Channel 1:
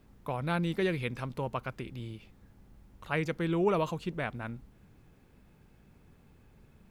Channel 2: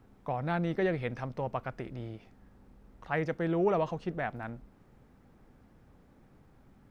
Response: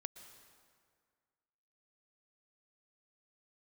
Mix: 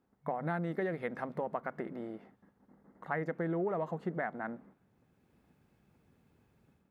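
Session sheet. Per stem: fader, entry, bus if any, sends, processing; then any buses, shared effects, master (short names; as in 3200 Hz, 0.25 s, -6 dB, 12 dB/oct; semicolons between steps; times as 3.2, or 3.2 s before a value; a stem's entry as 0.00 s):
-19.5 dB, 0.00 s, send -14 dB, HPF 78 Hz; AGC gain up to 10.5 dB; auto duck -10 dB, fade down 1.85 s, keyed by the second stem
+3.0 dB, 0.00 s, polarity flipped, no send, Wiener smoothing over 9 samples; gate -55 dBFS, range -17 dB; FFT band-pass 140–2200 Hz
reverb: on, RT60 1.9 s, pre-delay 0.108 s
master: compressor 6:1, threshold -31 dBFS, peak gain reduction 10.5 dB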